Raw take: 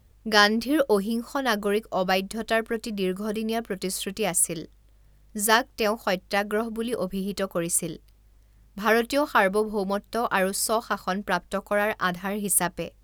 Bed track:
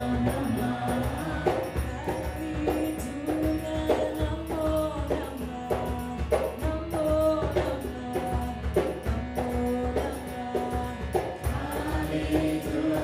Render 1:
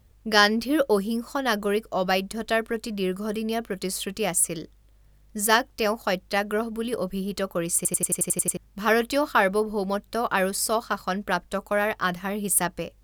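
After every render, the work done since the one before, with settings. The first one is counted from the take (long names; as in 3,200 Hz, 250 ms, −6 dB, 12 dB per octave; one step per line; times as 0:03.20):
0:07.76: stutter in place 0.09 s, 9 plays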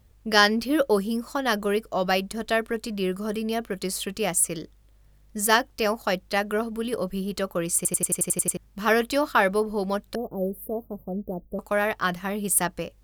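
0:10.15–0:11.59: inverse Chebyshev band-stop filter 1,800–5,900 Hz, stop band 70 dB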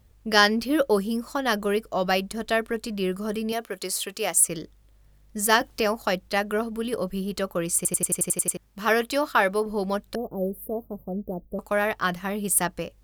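0:03.52–0:04.48: bass and treble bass −14 dB, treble +3 dB
0:05.61–0:06.28: multiband upward and downward compressor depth 40%
0:08.30–0:09.66: low-shelf EQ 210 Hz −6.5 dB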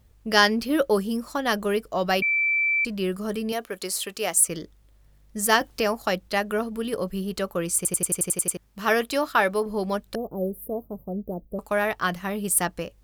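0:02.22–0:02.85: beep over 2,330 Hz −19.5 dBFS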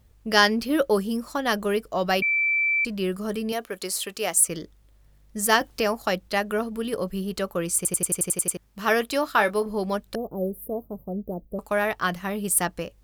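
0:09.26–0:09.68: double-tracking delay 24 ms −12 dB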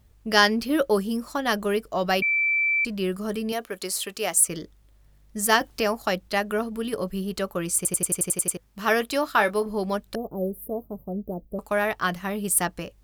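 notch filter 500 Hz, Q 15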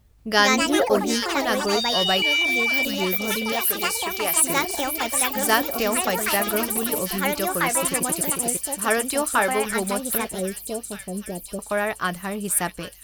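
on a send: delay with a high-pass on its return 785 ms, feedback 63%, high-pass 3,200 Hz, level −3.5 dB
on the sum: delay with pitch and tempo change per echo 186 ms, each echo +4 semitones, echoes 3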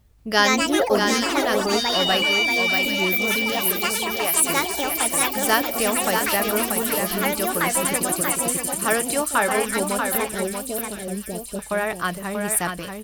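single-tap delay 636 ms −5.5 dB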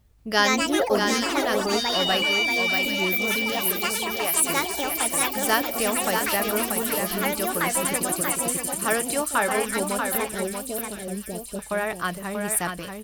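level −2.5 dB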